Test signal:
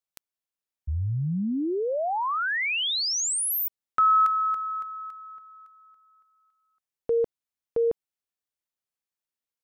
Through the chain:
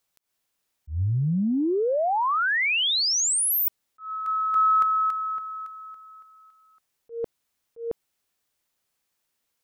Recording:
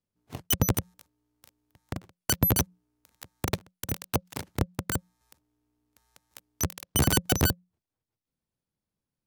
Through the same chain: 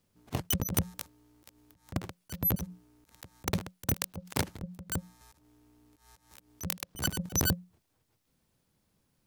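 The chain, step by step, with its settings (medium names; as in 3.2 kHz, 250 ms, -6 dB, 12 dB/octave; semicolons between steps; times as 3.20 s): compressor with a negative ratio -32 dBFS, ratio -1; slow attack 147 ms; trim +8 dB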